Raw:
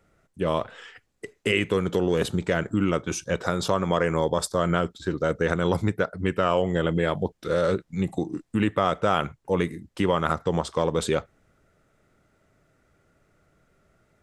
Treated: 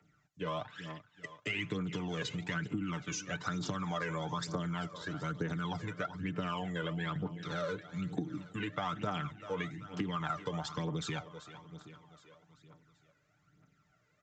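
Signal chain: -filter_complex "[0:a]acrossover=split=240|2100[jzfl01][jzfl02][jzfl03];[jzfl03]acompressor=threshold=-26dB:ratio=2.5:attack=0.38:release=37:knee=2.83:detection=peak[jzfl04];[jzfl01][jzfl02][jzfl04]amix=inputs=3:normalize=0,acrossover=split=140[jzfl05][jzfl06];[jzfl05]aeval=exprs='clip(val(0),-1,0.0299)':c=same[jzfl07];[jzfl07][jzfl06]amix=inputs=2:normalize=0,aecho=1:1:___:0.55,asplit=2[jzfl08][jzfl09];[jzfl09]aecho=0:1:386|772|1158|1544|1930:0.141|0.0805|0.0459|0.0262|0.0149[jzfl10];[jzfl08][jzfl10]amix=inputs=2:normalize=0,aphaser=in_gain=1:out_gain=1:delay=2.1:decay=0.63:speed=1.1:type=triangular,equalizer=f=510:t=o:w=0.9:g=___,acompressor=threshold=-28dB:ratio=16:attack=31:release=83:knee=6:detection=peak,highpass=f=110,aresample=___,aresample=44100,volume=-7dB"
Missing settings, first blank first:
6.7, -10.5, 16000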